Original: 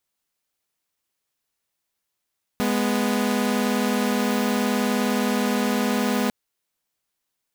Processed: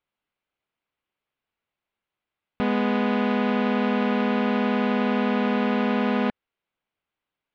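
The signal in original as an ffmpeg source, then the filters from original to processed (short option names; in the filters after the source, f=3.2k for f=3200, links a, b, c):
-f lavfi -i "aevalsrc='0.0944*((2*mod(207.65*t,1)-1)+(2*mod(246.94*t,1)-1))':d=3.7:s=44100"
-af "lowpass=f=3.1k:w=0.5412,lowpass=f=3.1k:w=1.3066,bandreject=f=1.8k:w=15"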